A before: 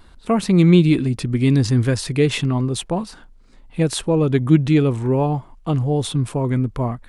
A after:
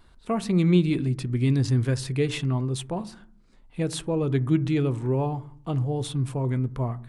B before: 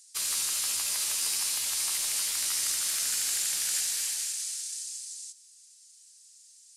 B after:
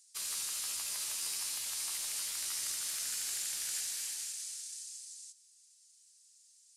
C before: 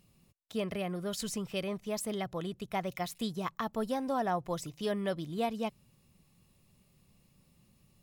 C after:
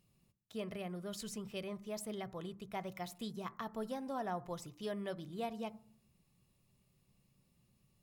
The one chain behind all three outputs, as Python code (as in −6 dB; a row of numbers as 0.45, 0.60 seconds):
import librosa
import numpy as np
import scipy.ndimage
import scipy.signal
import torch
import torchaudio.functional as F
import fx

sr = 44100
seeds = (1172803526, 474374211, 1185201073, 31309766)

y = fx.rev_fdn(x, sr, rt60_s=0.55, lf_ratio=1.6, hf_ratio=0.3, size_ms=46.0, drr_db=14.0)
y = y * librosa.db_to_amplitude(-8.0)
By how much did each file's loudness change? −7.0, −8.0, −7.5 LU